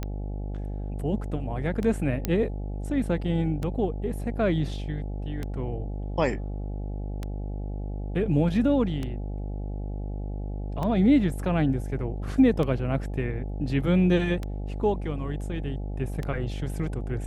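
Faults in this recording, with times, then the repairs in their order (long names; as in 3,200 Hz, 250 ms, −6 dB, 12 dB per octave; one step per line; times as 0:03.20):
mains buzz 50 Hz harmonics 17 −32 dBFS
scratch tick 33 1/3 rpm −18 dBFS
0:02.25: click −11 dBFS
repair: click removal
hum removal 50 Hz, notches 17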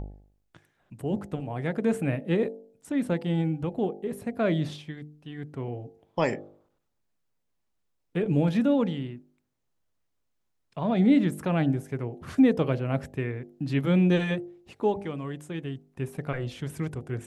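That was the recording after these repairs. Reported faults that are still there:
0:02.25: click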